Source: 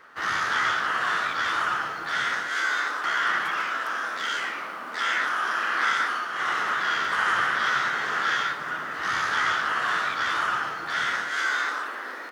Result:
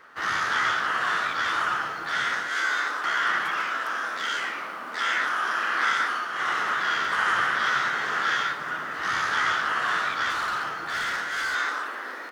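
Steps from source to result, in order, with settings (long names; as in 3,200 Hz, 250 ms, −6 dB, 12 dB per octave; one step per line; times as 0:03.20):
0:10.30–0:11.55: hard clipping −24.5 dBFS, distortion −21 dB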